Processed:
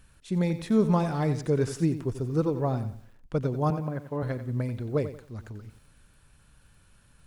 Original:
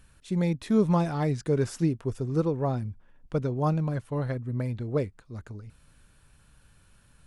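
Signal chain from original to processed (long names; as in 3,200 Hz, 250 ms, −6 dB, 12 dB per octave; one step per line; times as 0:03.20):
0:03.70–0:04.23: band-pass filter 170–2,000 Hz
feedback echo at a low word length 90 ms, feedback 35%, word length 9 bits, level −11.5 dB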